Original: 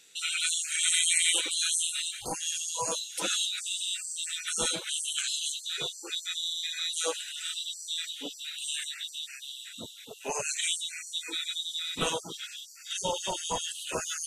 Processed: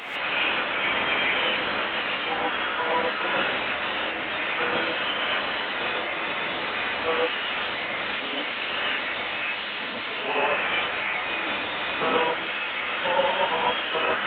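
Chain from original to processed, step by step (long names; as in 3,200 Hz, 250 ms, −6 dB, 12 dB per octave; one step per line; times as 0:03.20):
linear delta modulator 16 kbit/s, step −34 dBFS
high-pass filter 570 Hz 6 dB per octave
reverb whose tail is shaped and stops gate 170 ms rising, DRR −6 dB
level +6.5 dB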